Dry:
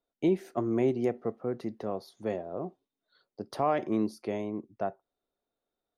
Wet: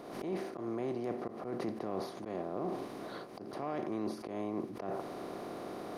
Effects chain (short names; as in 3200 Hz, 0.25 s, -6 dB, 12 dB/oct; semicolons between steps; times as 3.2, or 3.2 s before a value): per-bin compression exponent 0.4; reverse; compressor 5:1, threshold -40 dBFS, peak gain reduction 19 dB; reverse; auto swell 0.108 s; backwards sustainer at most 50 dB/s; gain +3.5 dB